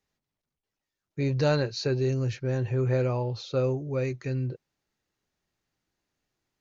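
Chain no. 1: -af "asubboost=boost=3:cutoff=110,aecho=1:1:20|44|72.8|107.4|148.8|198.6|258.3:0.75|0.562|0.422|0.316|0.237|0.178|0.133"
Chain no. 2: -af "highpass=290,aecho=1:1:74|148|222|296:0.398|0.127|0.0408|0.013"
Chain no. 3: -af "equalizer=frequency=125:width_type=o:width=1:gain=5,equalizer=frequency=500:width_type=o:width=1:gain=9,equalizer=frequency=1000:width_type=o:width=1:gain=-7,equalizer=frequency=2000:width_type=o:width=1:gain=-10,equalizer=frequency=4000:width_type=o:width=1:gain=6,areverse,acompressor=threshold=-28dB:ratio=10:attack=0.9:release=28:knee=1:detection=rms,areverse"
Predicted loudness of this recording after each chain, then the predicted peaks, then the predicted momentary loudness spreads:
−25.5, −30.5, −32.5 LKFS; −7.5, −11.5, −24.0 dBFS; 9, 13, 3 LU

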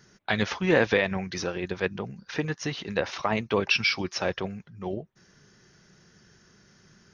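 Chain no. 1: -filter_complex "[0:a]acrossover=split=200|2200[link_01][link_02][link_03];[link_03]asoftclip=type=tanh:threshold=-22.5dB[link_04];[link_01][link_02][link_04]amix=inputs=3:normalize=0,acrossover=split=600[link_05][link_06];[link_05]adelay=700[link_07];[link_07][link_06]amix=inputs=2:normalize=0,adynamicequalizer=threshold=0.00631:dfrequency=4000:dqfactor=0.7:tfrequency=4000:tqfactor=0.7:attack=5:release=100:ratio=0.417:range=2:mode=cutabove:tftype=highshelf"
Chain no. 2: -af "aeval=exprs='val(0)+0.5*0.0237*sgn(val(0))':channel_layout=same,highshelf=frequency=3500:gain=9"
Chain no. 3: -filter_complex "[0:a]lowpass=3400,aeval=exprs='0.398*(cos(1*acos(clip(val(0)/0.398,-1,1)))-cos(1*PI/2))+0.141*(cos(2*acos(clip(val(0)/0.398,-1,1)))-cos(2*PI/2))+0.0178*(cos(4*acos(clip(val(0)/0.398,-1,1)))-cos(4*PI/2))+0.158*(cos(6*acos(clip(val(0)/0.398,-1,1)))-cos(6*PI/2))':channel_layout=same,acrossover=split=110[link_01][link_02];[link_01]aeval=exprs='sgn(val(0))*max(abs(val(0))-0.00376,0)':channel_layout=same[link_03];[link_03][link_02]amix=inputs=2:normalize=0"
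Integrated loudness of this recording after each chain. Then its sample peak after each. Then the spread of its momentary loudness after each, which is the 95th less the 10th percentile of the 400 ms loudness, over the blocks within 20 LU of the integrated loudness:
−30.0, −25.0, −24.0 LKFS; −11.5, −6.0, −3.5 dBFS; 11, 12, 13 LU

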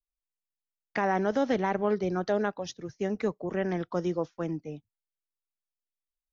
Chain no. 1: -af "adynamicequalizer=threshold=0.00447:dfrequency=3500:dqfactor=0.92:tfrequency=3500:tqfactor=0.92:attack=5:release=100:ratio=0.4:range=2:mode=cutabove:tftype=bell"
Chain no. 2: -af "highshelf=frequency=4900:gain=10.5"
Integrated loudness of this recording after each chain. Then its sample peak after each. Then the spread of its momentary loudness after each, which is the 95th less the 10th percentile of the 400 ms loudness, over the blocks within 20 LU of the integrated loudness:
−30.5, −30.0 LKFS; −15.5, −15.0 dBFS; 11, 9 LU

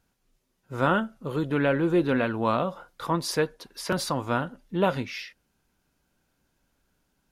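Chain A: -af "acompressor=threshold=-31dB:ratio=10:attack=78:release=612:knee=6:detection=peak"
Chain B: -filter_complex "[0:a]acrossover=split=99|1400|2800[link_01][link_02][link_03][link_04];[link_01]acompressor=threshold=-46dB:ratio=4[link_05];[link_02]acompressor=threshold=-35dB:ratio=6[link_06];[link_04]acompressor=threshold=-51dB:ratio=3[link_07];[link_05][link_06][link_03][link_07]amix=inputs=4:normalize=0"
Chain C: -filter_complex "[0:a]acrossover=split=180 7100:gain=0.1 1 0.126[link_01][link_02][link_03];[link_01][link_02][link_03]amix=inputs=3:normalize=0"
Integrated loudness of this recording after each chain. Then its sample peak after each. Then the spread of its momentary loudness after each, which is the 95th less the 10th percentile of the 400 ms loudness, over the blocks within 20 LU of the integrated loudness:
−34.5, −36.0, −28.0 LKFS; −15.0, −17.5, −10.5 dBFS; 7, 8, 12 LU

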